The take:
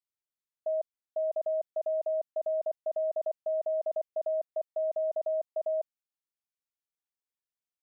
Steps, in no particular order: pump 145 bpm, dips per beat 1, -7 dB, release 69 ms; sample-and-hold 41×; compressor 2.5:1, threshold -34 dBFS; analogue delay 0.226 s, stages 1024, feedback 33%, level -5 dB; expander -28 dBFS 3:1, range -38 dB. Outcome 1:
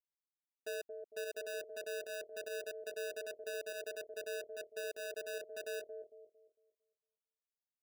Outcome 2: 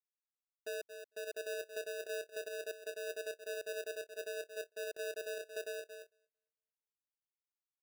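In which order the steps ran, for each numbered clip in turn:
compressor > sample-and-hold > expander > pump > analogue delay; pump > analogue delay > compressor > sample-and-hold > expander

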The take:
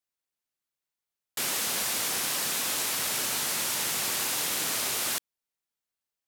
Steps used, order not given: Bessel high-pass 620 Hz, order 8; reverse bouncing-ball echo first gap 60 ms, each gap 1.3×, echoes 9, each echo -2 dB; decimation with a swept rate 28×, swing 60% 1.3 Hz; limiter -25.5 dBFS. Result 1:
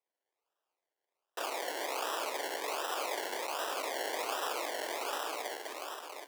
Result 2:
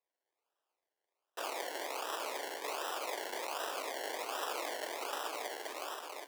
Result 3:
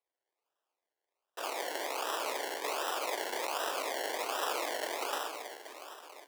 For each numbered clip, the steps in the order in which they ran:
reverse bouncing-ball echo > decimation with a swept rate > limiter > Bessel high-pass; reverse bouncing-ball echo > limiter > decimation with a swept rate > Bessel high-pass; limiter > reverse bouncing-ball echo > decimation with a swept rate > Bessel high-pass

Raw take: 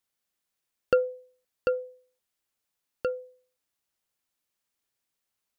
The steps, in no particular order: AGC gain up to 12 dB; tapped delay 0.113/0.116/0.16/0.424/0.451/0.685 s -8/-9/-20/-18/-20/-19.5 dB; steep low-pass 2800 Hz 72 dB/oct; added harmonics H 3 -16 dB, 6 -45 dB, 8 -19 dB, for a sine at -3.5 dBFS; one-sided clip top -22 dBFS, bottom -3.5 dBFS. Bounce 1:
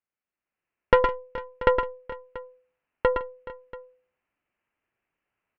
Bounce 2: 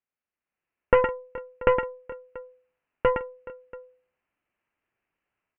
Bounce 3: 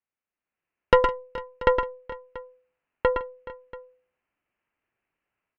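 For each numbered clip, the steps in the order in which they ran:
one-sided clip > steep low-pass > added harmonics > tapped delay > AGC; AGC > tapped delay > added harmonics > one-sided clip > steep low-pass; steep low-pass > added harmonics > one-sided clip > AGC > tapped delay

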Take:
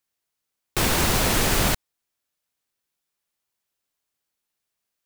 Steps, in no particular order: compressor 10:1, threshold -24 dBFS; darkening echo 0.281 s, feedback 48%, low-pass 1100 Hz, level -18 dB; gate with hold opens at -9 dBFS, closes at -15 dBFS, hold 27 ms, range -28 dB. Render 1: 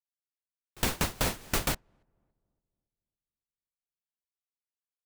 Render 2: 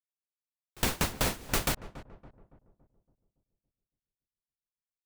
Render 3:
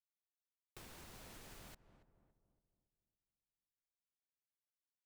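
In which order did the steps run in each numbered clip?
darkening echo > gate with hold > compressor; gate with hold > darkening echo > compressor; darkening echo > compressor > gate with hold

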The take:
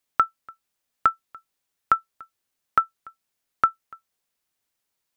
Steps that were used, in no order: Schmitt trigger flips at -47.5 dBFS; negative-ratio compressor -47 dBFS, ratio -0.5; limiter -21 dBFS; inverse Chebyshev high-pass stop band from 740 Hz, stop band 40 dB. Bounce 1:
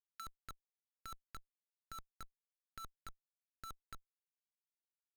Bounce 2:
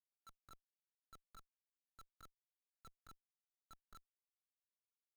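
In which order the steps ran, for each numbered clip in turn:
limiter > inverse Chebyshev high-pass > Schmitt trigger > negative-ratio compressor; limiter > negative-ratio compressor > inverse Chebyshev high-pass > Schmitt trigger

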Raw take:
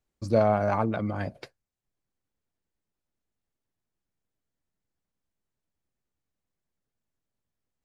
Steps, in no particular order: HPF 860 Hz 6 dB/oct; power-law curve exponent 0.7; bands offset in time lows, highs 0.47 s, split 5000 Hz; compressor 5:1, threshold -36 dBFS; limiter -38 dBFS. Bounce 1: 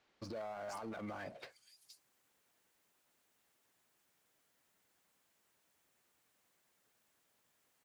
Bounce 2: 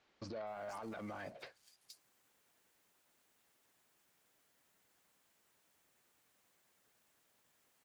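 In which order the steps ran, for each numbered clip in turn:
HPF > compressor > limiter > bands offset in time > power-law curve; compressor > HPF > power-law curve > bands offset in time > limiter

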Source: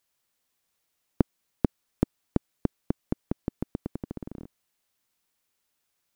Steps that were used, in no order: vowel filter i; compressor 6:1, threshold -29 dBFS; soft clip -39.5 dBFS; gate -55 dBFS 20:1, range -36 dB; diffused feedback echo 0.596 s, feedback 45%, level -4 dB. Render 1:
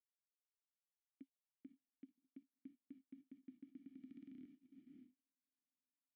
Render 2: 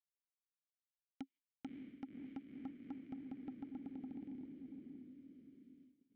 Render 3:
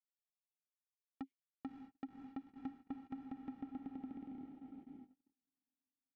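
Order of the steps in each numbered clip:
compressor > soft clip > diffused feedback echo > gate > vowel filter; compressor > diffused feedback echo > gate > vowel filter > soft clip; vowel filter > compressor > soft clip > diffused feedback echo > gate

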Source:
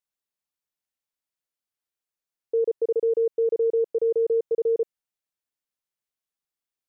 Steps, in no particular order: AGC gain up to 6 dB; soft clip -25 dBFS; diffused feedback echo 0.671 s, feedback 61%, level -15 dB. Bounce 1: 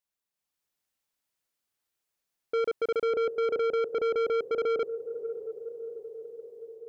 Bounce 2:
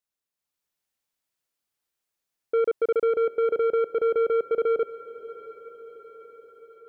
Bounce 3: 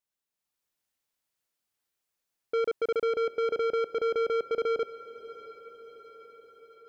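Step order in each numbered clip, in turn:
AGC > diffused feedback echo > soft clip; soft clip > AGC > diffused feedback echo; AGC > soft clip > diffused feedback echo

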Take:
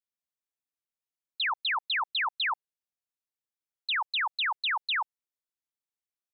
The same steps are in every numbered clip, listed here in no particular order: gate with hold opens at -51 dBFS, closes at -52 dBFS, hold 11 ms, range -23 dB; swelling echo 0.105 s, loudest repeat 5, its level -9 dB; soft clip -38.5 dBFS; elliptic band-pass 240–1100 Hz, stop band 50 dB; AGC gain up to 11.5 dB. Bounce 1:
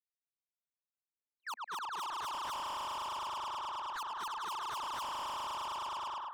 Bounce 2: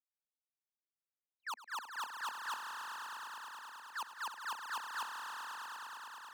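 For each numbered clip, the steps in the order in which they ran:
elliptic band-pass > gate with hold > swelling echo > AGC > soft clip; elliptic band-pass > gate with hold > AGC > soft clip > swelling echo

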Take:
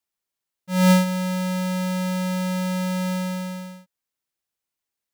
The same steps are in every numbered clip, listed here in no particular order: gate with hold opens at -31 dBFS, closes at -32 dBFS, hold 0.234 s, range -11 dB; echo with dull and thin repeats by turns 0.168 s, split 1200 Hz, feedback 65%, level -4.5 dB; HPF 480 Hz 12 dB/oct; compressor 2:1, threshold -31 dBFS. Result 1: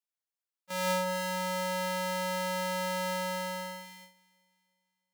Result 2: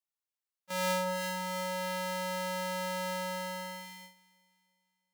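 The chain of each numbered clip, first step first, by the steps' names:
compressor > echo with dull and thin repeats by turns > gate with hold > HPF; echo with dull and thin repeats by turns > compressor > gate with hold > HPF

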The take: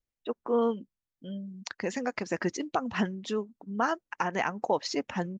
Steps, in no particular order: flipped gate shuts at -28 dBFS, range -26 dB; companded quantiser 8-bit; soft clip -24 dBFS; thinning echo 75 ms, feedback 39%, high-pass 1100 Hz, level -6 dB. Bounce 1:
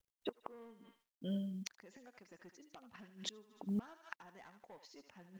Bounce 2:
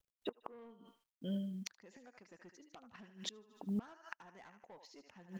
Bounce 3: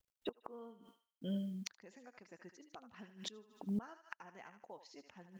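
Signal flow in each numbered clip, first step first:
soft clip > thinning echo > flipped gate > companded quantiser; thinning echo > companded quantiser > soft clip > flipped gate; companded quantiser > thinning echo > flipped gate > soft clip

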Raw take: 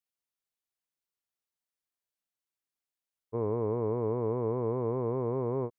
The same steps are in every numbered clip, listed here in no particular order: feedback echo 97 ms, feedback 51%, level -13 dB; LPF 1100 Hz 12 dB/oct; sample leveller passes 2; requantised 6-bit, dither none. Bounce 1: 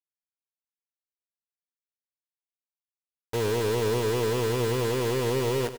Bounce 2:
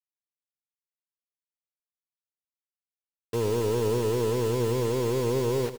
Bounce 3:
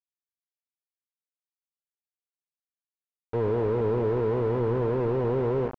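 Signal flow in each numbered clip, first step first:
LPF > requantised > sample leveller > feedback echo; sample leveller > LPF > requantised > feedback echo; feedback echo > requantised > sample leveller > LPF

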